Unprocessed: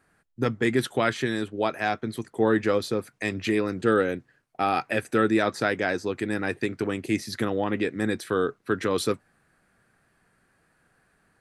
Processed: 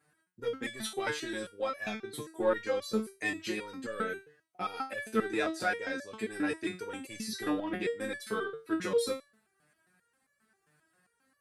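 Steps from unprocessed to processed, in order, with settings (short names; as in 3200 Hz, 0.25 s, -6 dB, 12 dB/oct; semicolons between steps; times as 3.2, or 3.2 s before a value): HPF 74 Hz; high shelf 5100 Hz +5.5 dB; in parallel at +2 dB: vocal rider 2 s; on the sum: soft clip -5 dBFS, distortion -22 dB; stepped resonator 7.5 Hz 150–570 Hz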